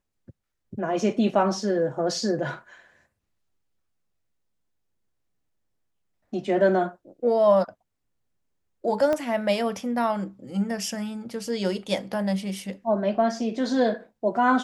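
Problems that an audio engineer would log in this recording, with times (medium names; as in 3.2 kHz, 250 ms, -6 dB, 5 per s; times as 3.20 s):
9.13 s: pop -14 dBFS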